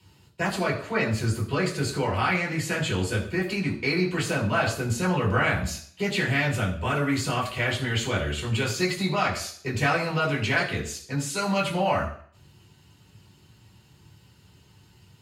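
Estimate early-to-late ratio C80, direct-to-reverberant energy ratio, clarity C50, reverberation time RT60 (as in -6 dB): 11.5 dB, -5.0 dB, 9.0 dB, 0.55 s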